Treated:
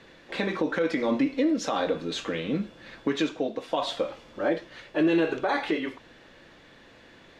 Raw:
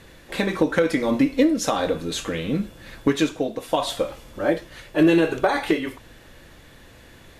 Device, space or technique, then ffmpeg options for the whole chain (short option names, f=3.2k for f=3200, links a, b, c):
DJ mixer with the lows and highs turned down: -filter_complex "[0:a]acrossover=split=160 6000:gain=0.224 1 0.0708[a][b][c];[a][b][c]amix=inputs=3:normalize=0,alimiter=limit=-13dB:level=0:latency=1:release=45,volume=-2.5dB"